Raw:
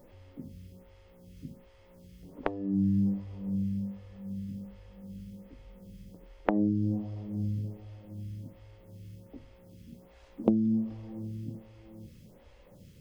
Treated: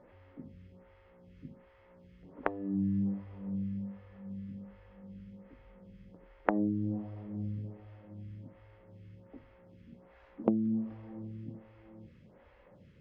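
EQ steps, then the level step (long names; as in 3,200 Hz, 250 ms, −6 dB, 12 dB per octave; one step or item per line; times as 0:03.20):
resonant band-pass 1,700 Hz, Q 1.3
spectral tilt −4.5 dB per octave
+6.0 dB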